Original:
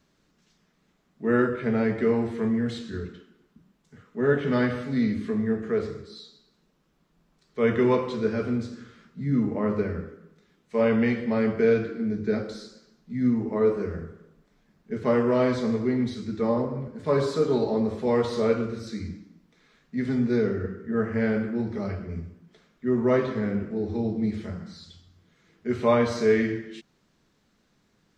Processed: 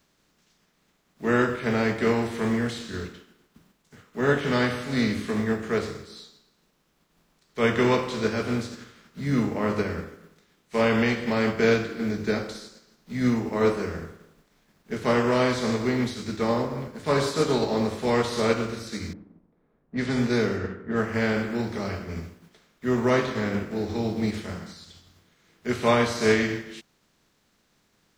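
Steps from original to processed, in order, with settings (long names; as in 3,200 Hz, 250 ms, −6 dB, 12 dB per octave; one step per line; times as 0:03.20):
compressing power law on the bin magnitudes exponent 0.67
0:19.13–0:21.06: low-pass that shuts in the quiet parts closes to 630 Hz, open at −21 dBFS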